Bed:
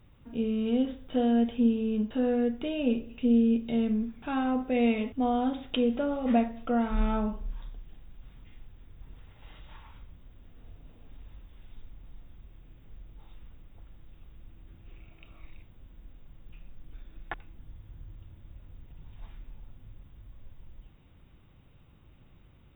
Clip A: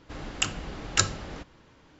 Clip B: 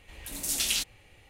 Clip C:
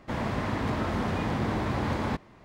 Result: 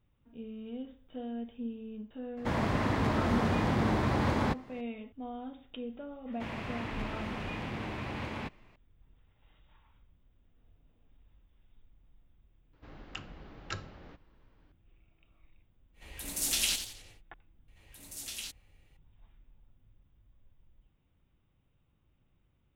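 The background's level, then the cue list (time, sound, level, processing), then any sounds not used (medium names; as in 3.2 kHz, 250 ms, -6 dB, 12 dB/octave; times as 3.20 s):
bed -14.5 dB
2.37 s: add C
6.32 s: add C -10 dB + peaking EQ 2.6 kHz +10.5 dB 0.73 oct
12.73 s: add A -11.5 dB + distance through air 200 m
15.93 s: add B -2 dB, fades 0.10 s + modulated delay 89 ms, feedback 43%, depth 178 cents, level -8.5 dB
17.68 s: add B -13 dB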